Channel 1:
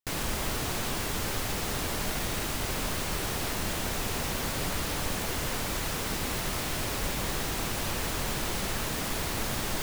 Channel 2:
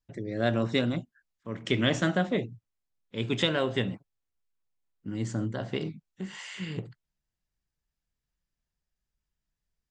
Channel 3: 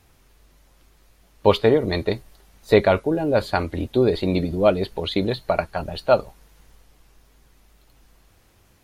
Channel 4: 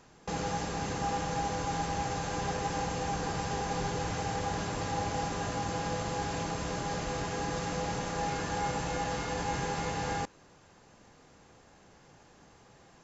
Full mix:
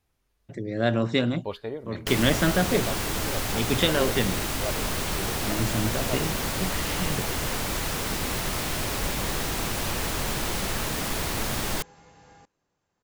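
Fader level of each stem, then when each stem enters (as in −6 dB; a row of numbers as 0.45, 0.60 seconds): +3.0, +3.0, −17.5, −20.0 decibels; 2.00, 0.40, 0.00, 2.20 seconds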